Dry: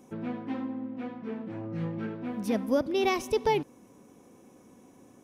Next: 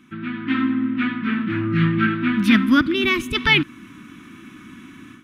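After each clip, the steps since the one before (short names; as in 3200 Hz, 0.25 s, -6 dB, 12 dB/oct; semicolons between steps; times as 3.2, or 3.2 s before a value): EQ curve 330 Hz 0 dB, 480 Hz -27 dB, 820 Hz -17 dB, 1300 Hz +10 dB, 3500 Hz +9 dB, 5600 Hz -8 dB; AGC gain up to 11 dB; spectral gain 2.94–3.35, 690–6200 Hz -9 dB; gain +4 dB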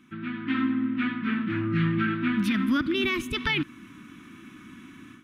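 limiter -11.5 dBFS, peak gain reduction 9.5 dB; gain -5 dB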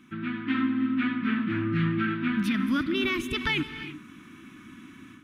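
in parallel at +2 dB: vocal rider within 5 dB 0.5 s; on the sum: non-linear reverb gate 0.37 s rising, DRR 11.5 dB; gain -8 dB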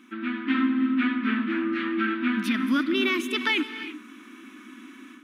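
brick-wall FIR high-pass 210 Hz; gain +3 dB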